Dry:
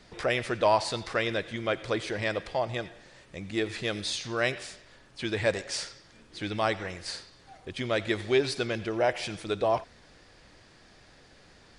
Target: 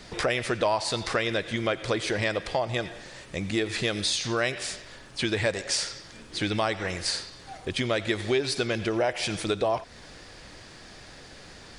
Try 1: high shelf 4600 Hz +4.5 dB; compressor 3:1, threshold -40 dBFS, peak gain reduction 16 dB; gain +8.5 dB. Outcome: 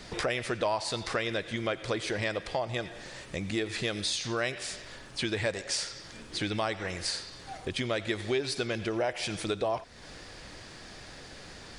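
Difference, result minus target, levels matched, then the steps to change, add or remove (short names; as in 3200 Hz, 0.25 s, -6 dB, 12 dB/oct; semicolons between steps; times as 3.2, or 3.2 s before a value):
compressor: peak gain reduction +4.5 dB
change: compressor 3:1, threshold -33.5 dBFS, peak gain reduction 12 dB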